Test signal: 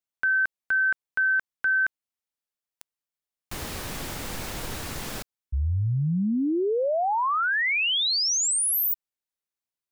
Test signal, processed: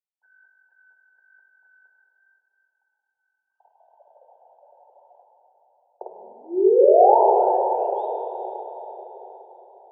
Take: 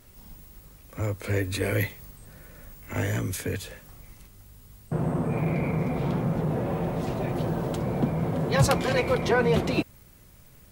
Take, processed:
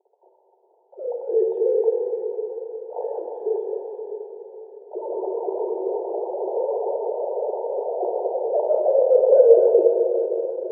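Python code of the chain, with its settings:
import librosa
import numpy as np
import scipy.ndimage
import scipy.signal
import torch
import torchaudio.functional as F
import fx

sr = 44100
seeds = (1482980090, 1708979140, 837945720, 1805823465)

y = fx.sine_speech(x, sr)
y = scipy.signal.sosfilt(scipy.signal.ellip(4, 1.0, 40, [370.0, 920.0], 'bandpass', fs=sr, output='sos'), y)
y = fx.rev_plate(y, sr, seeds[0], rt60_s=4.6, hf_ratio=0.75, predelay_ms=0, drr_db=-1.5)
y = F.gain(torch.from_numpy(y), 3.5).numpy()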